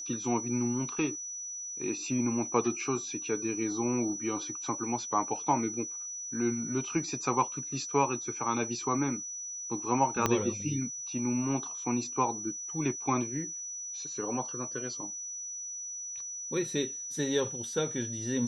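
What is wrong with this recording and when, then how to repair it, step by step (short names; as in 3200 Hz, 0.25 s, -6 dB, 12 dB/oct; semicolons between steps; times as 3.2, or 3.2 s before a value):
tone 5900 Hz -37 dBFS
10.26 pop -11 dBFS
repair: de-click; notch 5900 Hz, Q 30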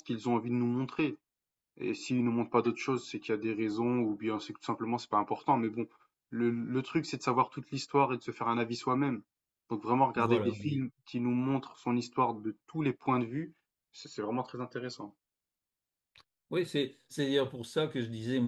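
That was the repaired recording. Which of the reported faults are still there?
10.26 pop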